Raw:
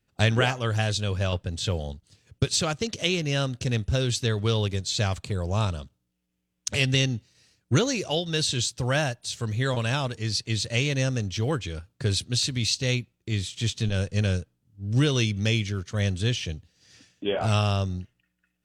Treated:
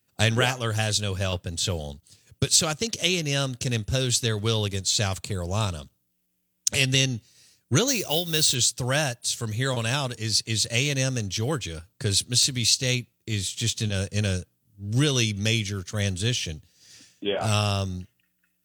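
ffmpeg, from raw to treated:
-filter_complex "[0:a]asettb=1/sr,asplit=3[a][b][c];[a]atrim=end=7.884[d];[b]atrim=start=7.88:end=8.55,asetpts=PTS-STARTPTS,afade=t=in:d=0.004:c=qsin,afade=t=out:st=0.666:d=0.004:c=qsin,acrusher=bits=5:mode=log:mix=0:aa=0.000001[e];[c]atrim=start=8.546[f];[d][e]acrossfade=d=0.004:c1=hsin:c2=qsin[g];[g][f]acrossfade=d=0.004:c1=qsin:c2=hsin,highpass=77,aemphasis=mode=production:type=50fm"

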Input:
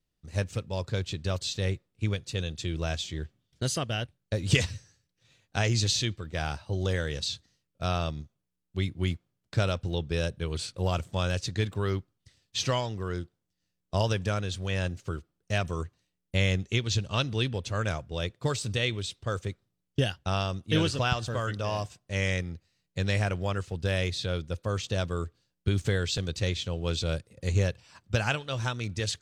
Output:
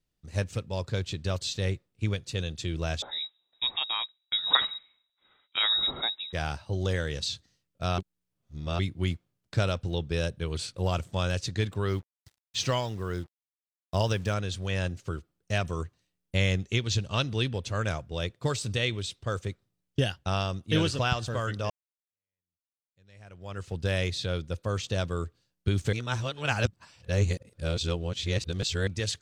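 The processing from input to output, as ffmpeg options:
-filter_complex "[0:a]asettb=1/sr,asplit=3[a][b][c];[a]atrim=end=3.024[d];[b]atrim=start=3.02:end=6.33,asetpts=PTS-STARTPTS,afade=t=in:d=0.004:c=qsin,afade=t=out:st=3.306:d=0.004:c=qsin,lowpass=f=3.3k:t=q:w=0.5098,lowpass=f=3.3k:t=q:w=0.6013,lowpass=f=3.3k:t=q:w=0.9,lowpass=f=3.3k:t=q:w=2.563,afreqshift=-3900[e];[c]atrim=start=6.326[f];[d][e]acrossfade=d=0.004:c1=hsin:c2=qsin[g];[g][f]acrossfade=d=0.004:c1=qsin:c2=hsin,asettb=1/sr,asplit=3[h][i][j];[h]atrim=end=11.904[k];[i]atrim=start=11.9:end=14.34,asetpts=PTS-STARTPTS,afade=t=in:d=0.004:c=qsin,afade=t=out:st=2.436:d=0.004:c=qsin,acrusher=bits=8:mix=0:aa=0.5[l];[j]atrim=start=14.336[m];[k][l]acrossfade=d=0.004:c1=hsin:c2=qsin[n];[n][m]acrossfade=d=0.004:c1=qsin:c2=hsin,asplit=6[o][p][q][r][s][t];[o]atrim=end=7.982[u];[p]atrim=start=7.978:end=8.792,asetpts=PTS-STARTPTS,areverse[v];[q]atrim=start=8.788:end=21.7,asetpts=PTS-STARTPTS,afade=t=out:st=12.908:d=0.004:c=hsin[w];[r]atrim=start=21.7:end=25.932,asetpts=PTS-STARTPTS,afade=t=in:d=1.99:c=exp[x];[s]atrim=start=25.928:end=28.872,asetpts=PTS-STARTPTS,areverse[y];[t]atrim=start=28.868[z];[u][v]acrossfade=d=0.004:c1=hsin:c2=hsin[aa];[w][x]concat=n=2:v=0:a=1[ab];[aa][ab]acrossfade=d=0.004:c1=hsin:c2=hsin[ac];[ac][y]acrossfade=d=0.004:c1=hsin:c2=hsin[ad];[ad][z]acrossfade=d=0.004:c1=hsin:c2=hsin"

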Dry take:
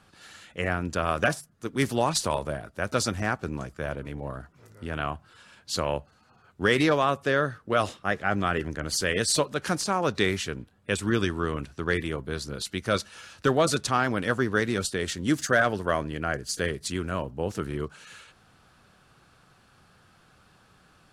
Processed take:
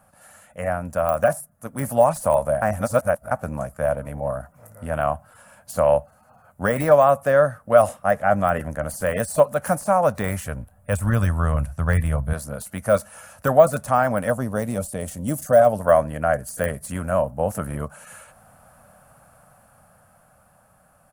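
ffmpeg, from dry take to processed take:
-filter_complex "[0:a]asettb=1/sr,asplit=3[a][b][c];[a]atrim=end=9.974[d];[b]atrim=start=9.97:end=12.33,asetpts=PTS-STARTPTS,afade=t=in:d=0.004:c=qsin,afade=t=out:st=2.356:d=0.004:c=qsin,asubboost=boost=11.5:cutoff=110[e];[c]atrim=start=12.326[f];[d][e]acrossfade=d=0.004:c1=hsin:c2=qsin[g];[g][f]acrossfade=d=0.004:c1=qsin:c2=hsin,asettb=1/sr,asplit=3[h][i][j];[h]atrim=end=14.304[k];[i]atrim=start=14.3:end=15.81,asetpts=PTS-STARTPTS,afade=t=in:d=0.004:c=qsin,afade=t=out:st=1.506:d=0.004:c=qsin,equalizer=f=1.6k:t=o:w=1:g=-11.5[l];[j]atrim=start=15.806[m];[k][l]acrossfade=d=0.004:c1=hsin:c2=qsin[n];[n][m]acrossfade=d=0.004:c1=qsin:c2=hsin,asplit=3[o][p][q];[o]atrim=end=2.622[r];[p]atrim=start=2.618:end=3.312,asetpts=PTS-STARTPTS,areverse[s];[q]atrim=start=3.308[t];[r][s]acrossfade=d=0.004:c1=hsin:c2=hsin[u];[u][t]acrossfade=d=0.004:c1=hsin:c2=hsin,deesser=0.8,firequalizer=gain_entry='entry(230,0);entry(370,-15);entry(580,11);entry(950,2);entry(3700,-16);entry(10000,12)':delay=0.05:min_phase=1,dynaudnorm=f=220:g=17:m=6dB"

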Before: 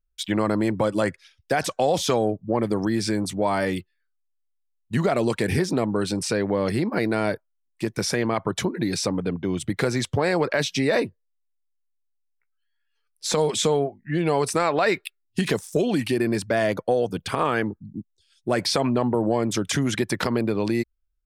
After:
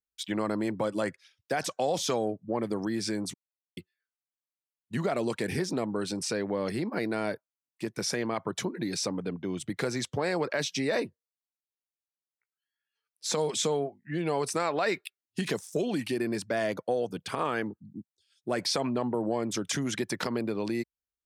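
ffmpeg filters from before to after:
-filter_complex "[0:a]asplit=3[a][b][c];[a]atrim=end=3.34,asetpts=PTS-STARTPTS,afade=t=out:st=3.336:d=0.004:c=hsin[d];[b]atrim=start=3.34:end=3.77,asetpts=PTS-STARTPTS,volume=0[e];[c]atrim=start=3.77,asetpts=PTS-STARTPTS,afade=t=in:d=0.004:c=hsin[f];[d][e][f]concat=n=3:v=0:a=1,highpass=130,adynamicequalizer=threshold=0.01:dfrequency=6000:dqfactor=1.5:tfrequency=6000:tqfactor=1.5:attack=5:release=100:ratio=0.375:range=2:mode=boostabove:tftype=bell,volume=-7dB"

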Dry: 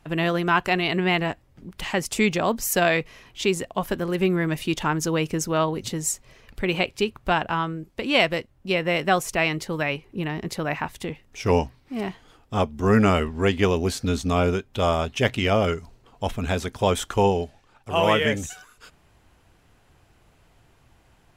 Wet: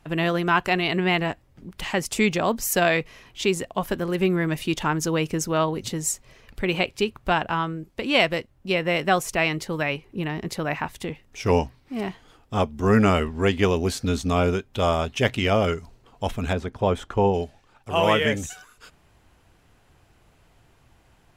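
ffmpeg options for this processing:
-filter_complex "[0:a]asettb=1/sr,asplit=3[a][b][c];[a]atrim=end=16.534[d];[b]atrim=start=16.53:end=17.34,asetpts=PTS-STARTPTS,afade=t=in:d=0.004:c=qsin,afade=t=out:st=0.806:d=0.004:c=qsin,lowpass=f=1.3k:p=1[e];[c]atrim=start=17.336[f];[d][e]acrossfade=d=0.004:c1=hsin:c2=qsin[g];[g][f]acrossfade=d=0.004:c1=qsin:c2=hsin"

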